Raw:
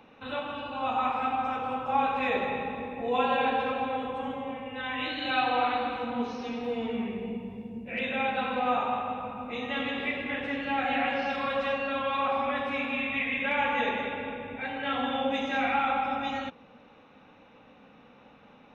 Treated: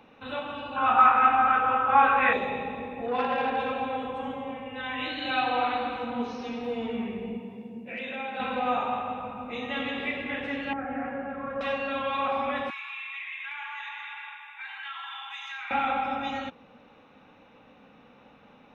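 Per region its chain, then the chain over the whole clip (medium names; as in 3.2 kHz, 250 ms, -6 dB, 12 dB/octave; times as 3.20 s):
0.76–2.33 s: steep low-pass 3.5 kHz 48 dB/octave + peaking EQ 1.5 kHz +14.5 dB 0.87 oct + doubling 18 ms -4 dB
3.06–3.57 s: low-pass 2.9 kHz + transformer saturation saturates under 910 Hz
7.40–8.40 s: high-pass 170 Hz + compression 2.5:1, threshold -33 dBFS
10.73–11.61 s: low-pass 1.5 kHz 24 dB/octave + peaking EQ 850 Hz -7.5 dB 1.1 oct
12.70–15.71 s: steep high-pass 900 Hz 72 dB/octave + compression 4:1, threshold -35 dBFS
whole clip: none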